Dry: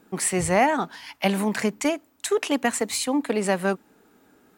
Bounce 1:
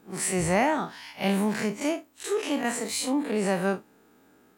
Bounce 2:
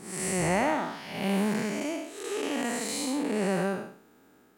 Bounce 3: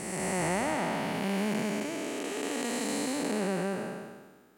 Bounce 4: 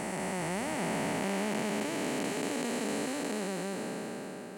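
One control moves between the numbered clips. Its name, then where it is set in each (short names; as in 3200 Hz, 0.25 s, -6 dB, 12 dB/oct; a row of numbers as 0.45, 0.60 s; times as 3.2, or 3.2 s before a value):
time blur, width: 84, 249, 642, 1770 ms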